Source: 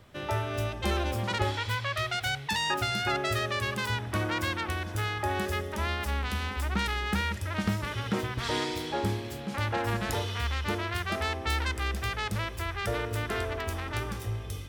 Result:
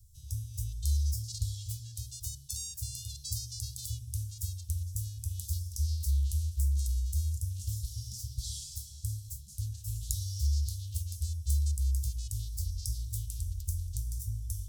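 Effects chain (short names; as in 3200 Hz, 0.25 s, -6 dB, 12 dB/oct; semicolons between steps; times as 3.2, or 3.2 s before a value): inverse Chebyshev band-stop 260–2200 Hz, stop band 60 dB; de-hum 166.3 Hz, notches 35; LFO bell 0.43 Hz 990–5200 Hz +9 dB; gain +5 dB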